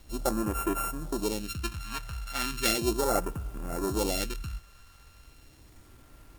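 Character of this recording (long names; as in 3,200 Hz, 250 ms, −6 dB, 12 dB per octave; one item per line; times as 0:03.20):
a buzz of ramps at a fixed pitch in blocks of 32 samples
phaser sweep stages 2, 0.36 Hz, lowest notch 320–4,100 Hz
a quantiser's noise floor 10 bits, dither none
MP3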